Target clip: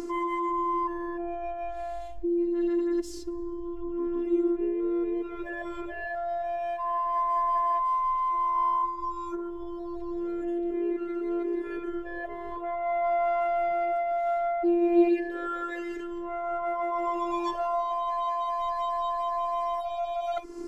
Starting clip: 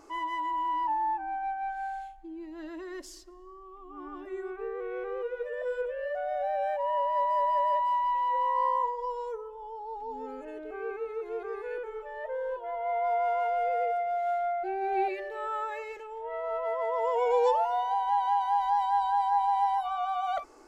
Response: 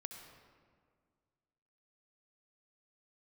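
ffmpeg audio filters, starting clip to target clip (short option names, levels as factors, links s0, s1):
-af "lowshelf=f=450:t=q:w=1.5:g=9.5,afftfilt=real='hypot(re,im)*cos(PI*b)':imag='0':win_size=512:overlap=0.75,acompressor=mode=upward:threshold=0.0251:ratio=2.5,volume=1.68"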